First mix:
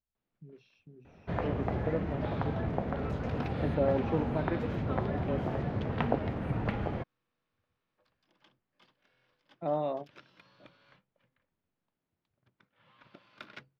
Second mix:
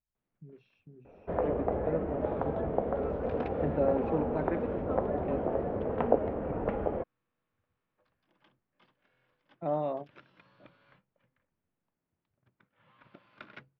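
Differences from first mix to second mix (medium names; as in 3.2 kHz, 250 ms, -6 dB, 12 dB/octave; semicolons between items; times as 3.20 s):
first sound: add graphic EQ 125/500/2000/4000/8000 Hz -12/+9/-5/-9/-5 dB; master: add tone controls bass +1 dB, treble -15 dB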